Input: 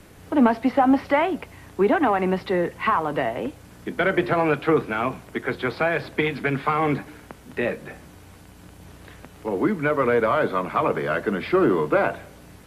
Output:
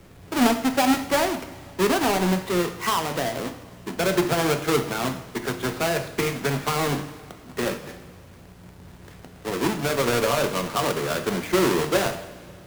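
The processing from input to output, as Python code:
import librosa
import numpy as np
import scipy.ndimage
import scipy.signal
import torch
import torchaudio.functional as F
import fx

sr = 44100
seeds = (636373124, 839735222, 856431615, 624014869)

y = fx.halfwave_hold(x, sr)
y = fx.rev_double_slope(y, sr, seeds[0], early_s=0.64, late_s=2.7, knee_db=-15, drr_db=6.5)
y = y * librosa.db_to_amplitude(-6.5)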